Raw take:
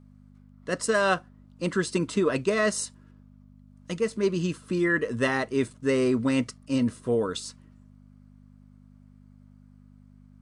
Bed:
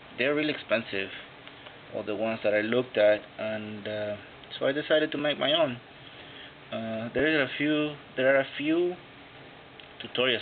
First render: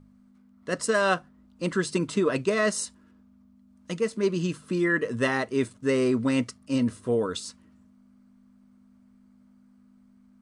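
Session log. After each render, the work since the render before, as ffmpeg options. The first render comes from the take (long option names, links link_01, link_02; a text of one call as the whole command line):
ffmpeg -i in.wav -af "bandreject=frequency=50:width_type=h:width=4,bandreject=frequency=100:width_type=h:width=4,bandreject=frequency=150:width_type=h:width=4" out.wav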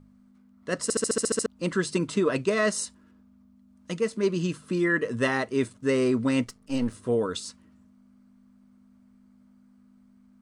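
ffmpeg -i in.wav -filter_complex "[0:a]asplit=3[link_01][link_02][link_03];[link_01]afade=type=out:start_time=6.44:duration=0.02[link_04];[link_02]aeval=exprs='if(lt(val(0),0),0.447*val(0),val(0))':channel_layout=same,afade=type=in:start_time=6.44:duration=0.02,afade=type=out:start_time=6.93:duration=0.02[link_05];[link_03]afade=type=in:start_time=6.93:duration=0.02[link_06];[link_04][link_05][link_06]amix=inputs=3:normalize=0,asplit=10[link_07][link_08][link_09][link_10][link_11][link_12][link_13][link_14][link_15][link_16];[link_07]atrim=end=0.902[link_17];[link_08]atrim=start=0.828:end=0.902[link_18];[link_09]atrim=start=0.828:end=0.902[link_19];[link_10]atrim=start=0.828:end=0.902[link_20];[link_11]atrim=start=0.828:end=0.902[link_21];[link_12]atrim=start=0.828:end=0.902[link_22];[link_13]atrim=start=0.828:end=0.902[link_23];[link_14]atrim=start=0.828:end=0.902[link_24];[link_15]atrim=start=0.828:end=0.902[link_25];[link_16]atrim=start=1.458[link_26];[link_17][link_18]acrossfade=duration=0.004:curve1=hsin:curve2=hsin[link_27];[link_27][link_19]acrossfade=duration=0.004:curve1=hsin:curve2=hsin[link_28];[link_28][link_20]acrossfade=duration=0.004:curve1=hsin:curve2=hsin[link_29];[link_29][link_21]acrossfade=duration=0.004:curve1=hsin:curve2=hsin[link_30];[link_30][link_22]acrossfade=duration=0.004:curve1=hsin:curve2=hsin[link_31];[link_31][link_23]acrossfade=duration=0.004:curve1=hsin:curve2=hsin[link_32];[link_32][link_24]acrossfade=duration=0.004:curve1=hsin:curve2=hsin[link_33];[link_33][link_25]acrossfade=duration=0.004:curve1=hsin:curve2=hsin[link_34];[link_34][link_26]acrossfade=duration=0.004:curve1=hsin:curve2=hsin" out.wav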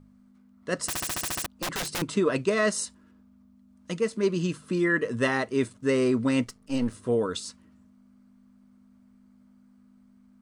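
ffmpeg -i in.wav -filter_complex "[0:a]asettb=1/sr,asplit=3[link_01][link_02][link_03];[link_01]atrim=end=0.874[link_04];[link_02]atrim=start=0.87:end=2.02,asetpts=PTS-STARTPTS,afade=type=in:duration=0.004:curve=qsin,afade=type=out:start_time=1.146:duration=0.004:curve=qsin,aeval=exprs='(mod(17.8*val(0)+1,2)-1)/17.8':channel_layout=same[link_05];[link_03]atrim=start=2.016[link_06];[link_04][link_05]acrossfade=duration=0.004:curve1=hsin:curve2=qsin[link_07];[link_07][link_06]acrossfade=duration=0.004:curve1=qsin:curve2=hsin" out.wav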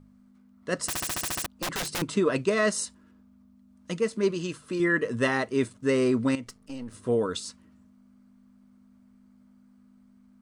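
ffmpeg -i in.wav -filter_complex "[0:a]asettb=1/sr,asplit=3[link_01][link_02][link_03];[link_01]atrim=end=4.314[link_04];[link_02]atrim=start=4.31:end=4.8,asetpts=PTS-STARTPTS,afade=type=in:duration=0.004:curve=qsin,afade=type=out:start_time=0.486:duration=0.004:curve=qsin,equalizer=frequency=190:width=1.5:gain=-8[link_05];[link_03]atrim=start=4.796[link_06];[link_04][link_05]acrossfade=duration=0.004:curve1=hsin:curve2=qsin[link_07];[link_07][link_06]acrossfade=duration=0.004:curve1=qsin:curve2=hsin,asettb=1/sr,asplit=3[link_08][link_09][link_10];[link_08]atrim=end=6.354[link_11];[link_09]atrim=start=6.35:end=7.02,asetpts=PTS-STARTPTS,afade=type=in:duration=0.004:curve=qsin,afade=type=out:start_time=0.666:duration=0.004:curve=qsin,acompressor=threshold=-35dB:ratio=4:attack=3.2:release=140:knee=1:detection=peak[link_12];[link_10]atrim=start=7.016[link_13];[link_11][link_12]acrossfade=duration=0.004:curve1=hsin:curve2=qsin[link_14];[link_14][link_13]acrossfade=duration=0.004:curve1=qsin:curve2=hsin" out.wav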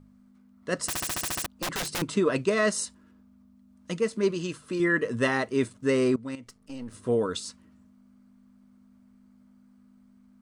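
ffmpeg -i in.wav -filter_complex "[0:a]asplit=2[link_01][link_02];[link_01]atrim=end=6.16,asetpts=PTS-STARTPTS,afade=type=out:start_time=6.156:duration=0.004:curve=hsin:silence=0.125893[link_03];[link_02]atrim=start=6.16,asetpts=PTS-STARTPTS,afade=type=in:duration=0.69:silence=0.125893[link_04];[link_03][link_04]concat=n=2:v=0:a=1" out.wav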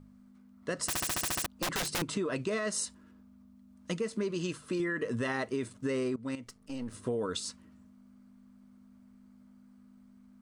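ffmpeg -i in.wav -af "alimiter=limit=-19.5dB:level=0:latency=1:release=58,acompressor=threshold=-29dB:ratio=6" out.wav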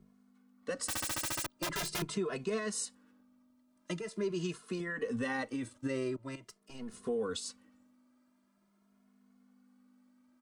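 ffmpeg -i in.wav -filter_complex "[0:a]acrossover=split=240[link_01][link_02];[link_01]aeval=exprs='sgn(val(0))*max(abs(val(0))-0.00141,0)':channel_layout=same[link_03];[link_03][link_02]amix=inputs=2:normalize=0,asplit=2[link_04][link_05];[link_05]adelay=2.4,afreqshift=0.44[link_06];[link_04][link_06]amix=inputs=2:normalize=1" out.wav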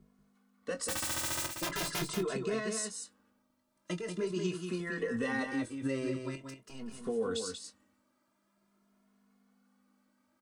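ffmpeg -i in.wav -filter_complex "[0:a]asplit=2[link_01][link_02];[link_02]adelay=22,volume=-9dB[link_03];[link_01][link_03]amix=inputs=2:normalize=0,aecho=1:1:186:0.501" out.wav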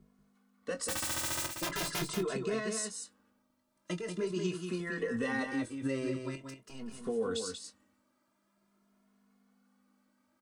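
ffmpeg -i in.wav -af anull out.wav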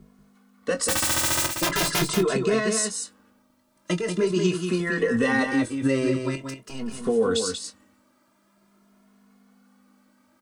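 ffmpeg -i in.wav -af "volume=11.5dB" out.wav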